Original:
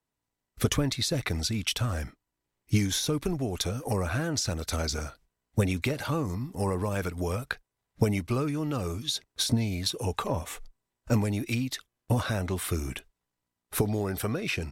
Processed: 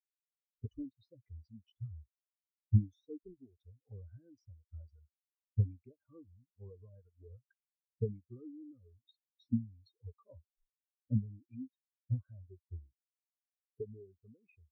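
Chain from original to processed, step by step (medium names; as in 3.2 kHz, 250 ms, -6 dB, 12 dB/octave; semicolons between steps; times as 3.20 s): peaking EQ 150 Hz -9.5 dB 0.4 oct; spectral contrast expander 4:1; trim -2 dB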